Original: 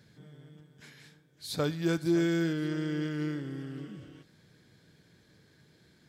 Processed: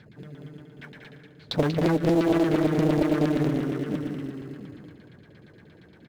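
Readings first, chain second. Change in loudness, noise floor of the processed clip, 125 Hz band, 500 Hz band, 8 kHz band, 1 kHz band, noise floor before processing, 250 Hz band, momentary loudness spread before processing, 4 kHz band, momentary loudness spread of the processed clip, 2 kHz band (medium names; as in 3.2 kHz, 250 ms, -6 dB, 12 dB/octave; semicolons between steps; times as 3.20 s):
+7.0 dB, -53 dBFS, +7.5 dB, +9.0 dB, no reading, +13.0 dB, -64 dBFS, +7.5 dB, 16 LU, +3.5 dB, 20 LU, +4.0 dB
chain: LFO low-pass saw down 8.6 Hz 240–3700 Hz; on a send: feedback delay 188 ms, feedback 30%, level -6.5 dB; on the sum: compression 2.5:1, threshold -28 dBFS, peak gain reduction 6.5 dB; echo from a far wall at 120 m, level -8 dB; in parallel at -12 dB: sample-rate reducer 2.3 kHz, jitter 0%; on the sum: loudspeaker Doppler distortion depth 0.75 ms; trim +6.5 dB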